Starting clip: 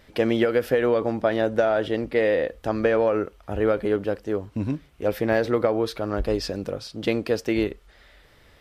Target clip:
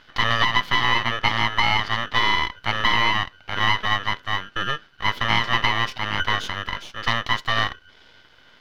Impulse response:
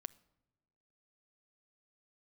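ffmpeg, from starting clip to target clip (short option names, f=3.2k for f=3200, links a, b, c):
-af "aeval=exprs='val(0)*sin(2*PI*1500*n/s)':c=same,aeval=exprs='max(val(0),0)':c=same,highshelf=f=6k:t=q:w=1.5:g=-10.5,volume=7dB"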